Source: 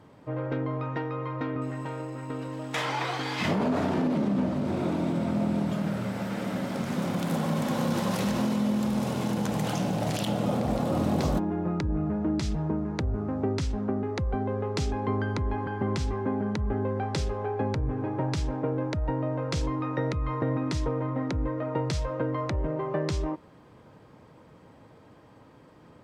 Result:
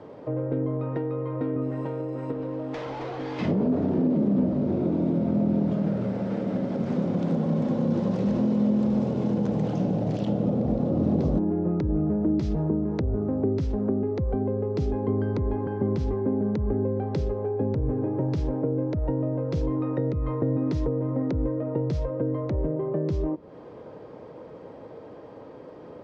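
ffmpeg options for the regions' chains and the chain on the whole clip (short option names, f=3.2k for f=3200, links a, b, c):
-filter_complex "[0:a]asettb=1/sr,asplit=3[a][b][c];[a]atrim=end=2.324[d];[b]atrim=start=2.32:end=3.39,asetpts=PTS-STARTPTS,afade=t=in:d=0.004:c=qsin,afade=t=out:st=1.066:d=0.004:c=qsin,highpass=98,highshelf=f=5.1k:g=-11.5,asoftclip=type=hard:threshold=-33dB[e];[c]atrim=start=3.386[f];[d][e]acrossfade=d=0.004:c1=hsin:c2=qsin[g];[g][f]acrossfade=d=0.004:c1=qsin:c2=hsin,lowpass=f=6.2k:w=0.5412,lowpass=f=6.2k:w=1.3066,equalizer=f=480:w=0.87:g=14.5,acrossover=split=280[h][i];[i]acompressor=threshold=-34dB:ratio=10[j];[h][j]amix=inputs=2:normalize=0,volume=1dB"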